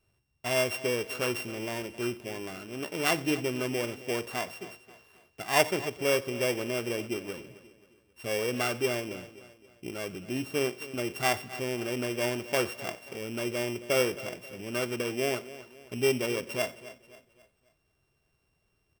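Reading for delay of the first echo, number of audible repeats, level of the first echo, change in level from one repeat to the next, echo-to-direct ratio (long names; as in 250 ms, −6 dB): 92 ms, 5, −22.0 dB, repeats not evenly spaced, −14.5 dB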